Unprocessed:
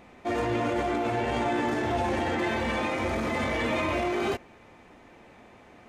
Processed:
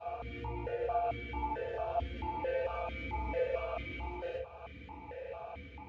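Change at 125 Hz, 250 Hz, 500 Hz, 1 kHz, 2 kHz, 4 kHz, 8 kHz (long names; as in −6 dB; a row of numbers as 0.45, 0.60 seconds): −8.0 dB, −18.0 dB, −6.5 dB, −8.0 dB, −13.5 dB, −15.0 dB, below −25 dB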